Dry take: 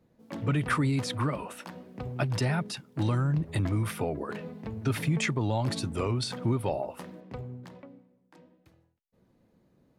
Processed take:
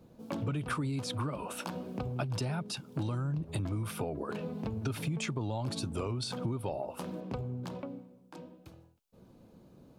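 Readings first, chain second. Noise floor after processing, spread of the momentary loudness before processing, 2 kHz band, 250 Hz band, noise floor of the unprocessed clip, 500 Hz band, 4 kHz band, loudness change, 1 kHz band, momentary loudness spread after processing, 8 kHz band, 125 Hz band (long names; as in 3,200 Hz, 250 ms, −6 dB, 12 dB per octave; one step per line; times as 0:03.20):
−60 dBFS, 15 LU, −8.0 dB, −5.0 dB, −69 dBFS, −4.5 dB, −3.5 dB, −6.0 dB, −5.0 dB, 8 LU, −3.0 dB, −5.5 dB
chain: parametric band 1,900 Hz −11.5 dB 0.34 octaves
downward compressor 4 to 1, threshold −43 dBFS, peak gain reduction 17 dB
level +8.5 dB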